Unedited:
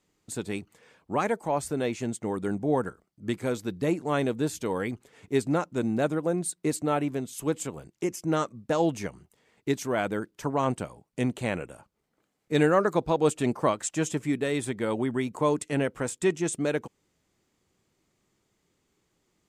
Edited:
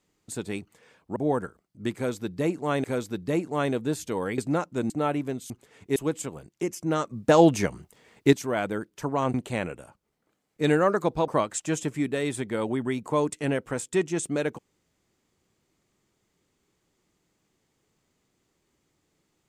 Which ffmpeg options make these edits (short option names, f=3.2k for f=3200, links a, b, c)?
-filter_complex "[0:a]asplit=11[a][b][c][d][e][f][g][h][i][j][k];[a]atrim=end=1.162[l];[b]atrim=start=2.588:end=4.272[m];[c]atrim=start=3.378:end=4.922[n];[d]atrim=start=5.378:end=5.902[o];[e]atrim=start=6.768:end=7.372[p];[f]atrim=start=4.918:end=5.382[q];[g]atrim=start=7.368:end=8.522[r];[h]atrim=start=8.518:end=9.742,asetpts=PTS-STARTPTS,volume=8dB[s];[i]atrim=start=9.738:end=10.752[t];[j]atrim=start=11.248:end=13.192[u];[k]atrim=start=13.568[v];[l][m]acrossfade=d=0.004:c1=hsin:c2=hsin[w];[w][n]acrossfade=d=0.004:c1=hsin:c2=hsin[x];[x][o]acrossfade=d=0.004:c1=hsin:c2=hsin[y];[y][p]acrossfade=d=0.004:c1=hsin:c2=hsin[z];[z][q]acrossfade=d=0.004:c1=hsin:c2=hsin[aa];[aa][r]acrossfade=d=0.004:c1=hsin:c2=hsin[ab];[ab][s]acrossfade=d=0.004:c1=hsin:c2=hsin[ac];[ac][t]acrossfade=d=0.004:c1=hsin:c2=hsin[ad];[ad][u]acrossfade=d=0.004:c1=hsin:c2=hsin[ae];[ae][v]acrossfade=d=0.004:c1=hsin:c2=hsin"